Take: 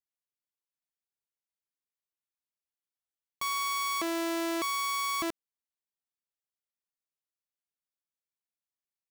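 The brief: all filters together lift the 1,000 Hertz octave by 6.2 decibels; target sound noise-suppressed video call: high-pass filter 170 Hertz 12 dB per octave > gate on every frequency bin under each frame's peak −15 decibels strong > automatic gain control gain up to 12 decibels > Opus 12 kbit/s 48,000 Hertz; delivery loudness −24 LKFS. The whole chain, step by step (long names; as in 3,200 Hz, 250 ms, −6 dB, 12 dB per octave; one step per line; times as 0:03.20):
high-pass filter 170 Hz 12 dB per octave
parametric band 1,000 Hz +7 dB
gate on every frequency bin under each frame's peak −15 dB strong
automatic gain control gain up to 12 dB
level +4.5 dB
Opus 12 kbit/s 48,000 Hz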